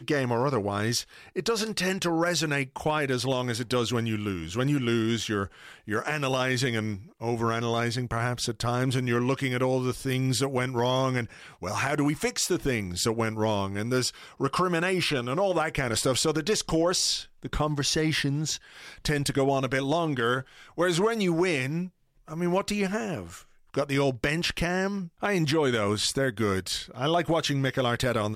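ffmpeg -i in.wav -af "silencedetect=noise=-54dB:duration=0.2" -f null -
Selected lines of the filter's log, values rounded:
silence_start: 21.90
silence_end: 22.20 | silence_duration: 0.30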